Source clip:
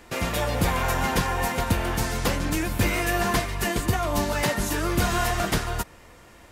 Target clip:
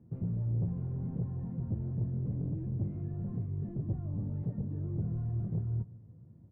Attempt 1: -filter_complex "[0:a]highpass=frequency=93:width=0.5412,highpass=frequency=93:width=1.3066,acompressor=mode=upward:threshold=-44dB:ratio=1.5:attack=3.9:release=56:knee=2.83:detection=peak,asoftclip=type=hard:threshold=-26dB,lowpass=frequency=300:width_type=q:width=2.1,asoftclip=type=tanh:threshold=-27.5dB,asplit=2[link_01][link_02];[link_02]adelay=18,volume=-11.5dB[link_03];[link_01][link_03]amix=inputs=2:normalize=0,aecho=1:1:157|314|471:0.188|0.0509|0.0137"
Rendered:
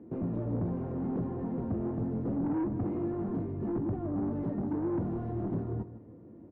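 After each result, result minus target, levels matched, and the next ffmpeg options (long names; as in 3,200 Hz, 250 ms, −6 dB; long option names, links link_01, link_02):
125 Hz band −6.0 dB; echo-to-direct +7.5 dB
-filter_complex "[0:a]highpass=frequency=93:width=0.5412,highpass=frequency=93:width=1.3066,acompressor=mode=upward:threshold=-44dB:ratio=1.5:attack=3.9:release=56:knee=2.83:detection=peak,asoftclip=type=hard:threshold=-26dB,lowpass=frequency=140:width_type=q:width=2.1,asoftclip=type=tanh:threshold=-27.5dB,asplit=2[link_01][link_02];[link_02]adelay=18,volume=-11.5dB[link_03];[link_01][link_03]amix=inputs=2:normalize=0,aecho=1:1:157|314|471:0.188|0.0509|0.0137"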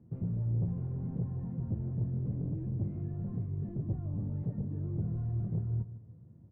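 echo-to-direct +7.5 dB
-filter_complex "[0:a]highpass=frequency=93:width=0.5412,highpass=frequency=93:width=1.3066,acompressor=mode=upward:threshold=-44dB:ratio=1.5:attack=3.9:release=56:knee=2.83:detection=peak,asoftclip=type=hard:threshold=-26dB,lowpass=frequency=140:width_type=q:width=2.1,asoftclip=type=tanh:threshold=-27.5dB,asplit=2[link_01][link_02];[link_02]adelay=18,volume=-11.5dB[link_03];[link_01][link_03]amix=inputs=2:normalize=0,aecho=1:1:157|314:0.0794|0.0214"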